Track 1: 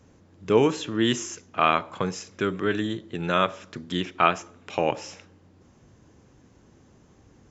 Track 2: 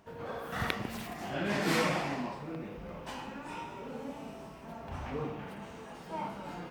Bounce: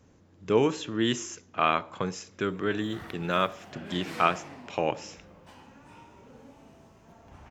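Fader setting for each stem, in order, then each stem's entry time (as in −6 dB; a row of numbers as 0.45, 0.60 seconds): −3.5, −10.5 decibels; 0.00, 2.40 seconds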